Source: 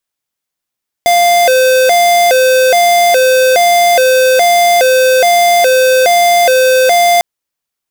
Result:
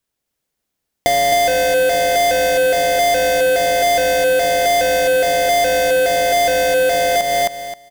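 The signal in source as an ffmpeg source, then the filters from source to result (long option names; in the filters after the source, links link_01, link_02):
-f lavfi -i "aevalsrc='0.398*(2*lt(mod((606*t+91/1.2*(0.5-abs(mod(1.2*t,1)-0.5))),1),0.5)-1)':duration=6.15:sample_rate=44100"
-filter_complex "[0:a]asplit=2[link_01][link_02];[link_02]acrusher=samples=35:mix=1:aa=0.000001,volume=-8.5dB[link_03];[link_01][link_03]amix=inputs=2:normalize=0,aecho=1:1:264|528|792:0.668|0.1|0.015,acompressor=threshold=-14dB:ratio=6"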